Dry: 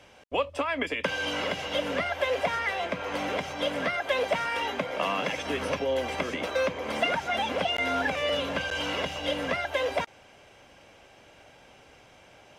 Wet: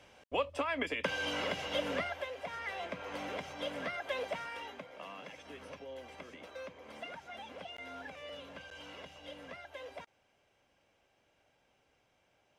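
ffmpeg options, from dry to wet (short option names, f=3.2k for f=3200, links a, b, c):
-af "volume=2dB,afade=t=out:st=1.94:d=0.4:silence=0.251189,afade=t=in:st=2.34:d=0.42:silence=0.421697,afade=t=out:st=4.13:d=0.77:silence=0.354813"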